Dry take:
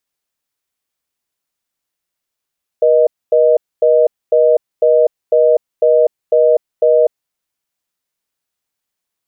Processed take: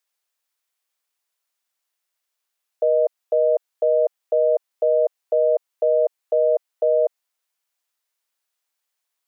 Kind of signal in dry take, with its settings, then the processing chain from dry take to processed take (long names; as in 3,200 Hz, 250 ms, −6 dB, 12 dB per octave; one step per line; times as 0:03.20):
call progress tone reorder tone, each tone −10 dBFS 4.48 s
high-pass filter 580 Hz 12 dB per octave
brickwall limiter −11.5 dBFS